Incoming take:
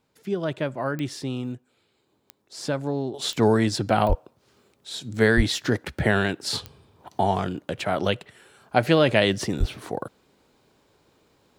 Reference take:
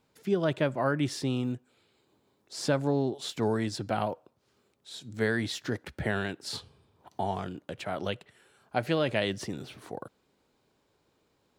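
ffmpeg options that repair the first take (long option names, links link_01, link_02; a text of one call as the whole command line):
ffmpeg -i in.wav -filter_complex "[0:a]adeclick=threshold=4,asplit=3[link_01][link_02][link_03];[link_01]afade=type=out:start_time=4.08:duration=0.02[link_04];[link_02]highpass=frequency=140:width=0.5412,highpass=frequency=140:width=1.3066,afade=type=in:start_time=4.08:duration=0.02,afade=type=out:start_time=4.2:duration=0.02[link_05];[link_03]afade=type=in:start_time=4.2:duration=0.02[link_06];[link_04][link_05][link_06]amix=inputs=3:normalize=0,asplit=3[link_07][link_08][link_09];[link_07]afade=type=out:start_time=5.36:duration=0.02[link_10];[link_08]highpass=frequency=140:width=0.5412,highpass=frequency=140:width=1.3066,afade=type=in:start_time=5.36:duration=0.02,afade=type=out:start_time=5.48:duration=0.02[link_11];[link_09]afade=type=in:start_time=5.48:duration=0.02[link_12];[link_10][link_11][link_12]amix=inputs=3:normalize=0,asplit=3[link_13][link_14][link_15];[link_13]afade=type=out:start_time=9.59:duration=0.02[link_16];[link_14]highpass=frequency=140:width=0.5412,highpass=frequency=140:width=1.3066,afade=type=in:start_time=9.59:duration=0.02,afade=type=out:start_time=9.71:duration=0.02[link_17];[link_15]afade=type=in:start_time=9.71:duration=0.02[link_18];[link_16][link_17][link_18]amix=inputs=3:normalize=0,asetnsamples=nb_out_samples=441:pad=0,asendcmd='3.14 volume volume -9dB',volume=0dB" out.wav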